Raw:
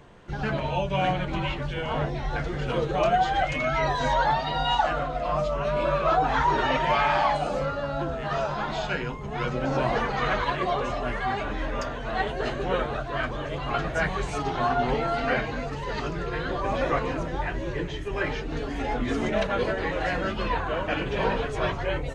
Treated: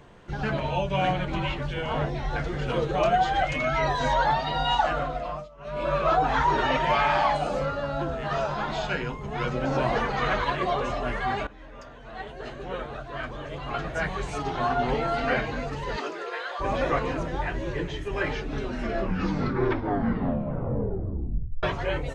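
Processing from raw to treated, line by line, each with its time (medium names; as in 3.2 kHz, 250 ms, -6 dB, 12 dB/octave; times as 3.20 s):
5.09–5.97 s: dip -22.5 dB, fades 0.40 s
11.47–15.17 s: fade in, from -18.5 dB
15.96–16.59 s: high-pass 240 Hz -> 730 Hz 24 dB/octave
18.32 s: tape stop 3.31 s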